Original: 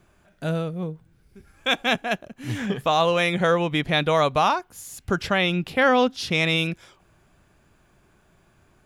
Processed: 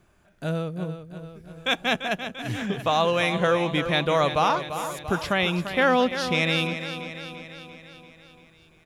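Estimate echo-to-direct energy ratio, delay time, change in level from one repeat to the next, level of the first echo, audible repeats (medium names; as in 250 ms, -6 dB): -8.0 dB, 342 ms, -4.5 dB, -10.0 dB, 6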